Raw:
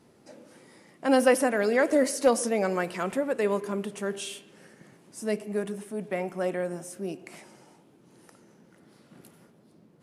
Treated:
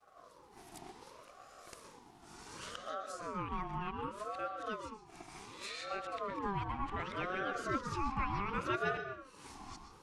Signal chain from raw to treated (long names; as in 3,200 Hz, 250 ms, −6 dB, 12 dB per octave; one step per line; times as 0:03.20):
played backwards from end to start
downward compressor 2 to 1, threshold −52 dBFS, peak gain reduction 19.5 dB
downward expander −53 dBFS
parametric band 5,700 Hz +7 dB 1.9 octaves
treble cut that deepens with the level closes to 2,900 Hz, closed at −40 dBFS
on a send at −6.5 dB: low-pass filter 8,300 Hz + convolution reverb RT60 0.70 s, pre-delay 113 ms
on the sum: ring modulator whose carrier an LFO sweeps 740 Hz, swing 30%, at 0.67 Hz
level +6 dB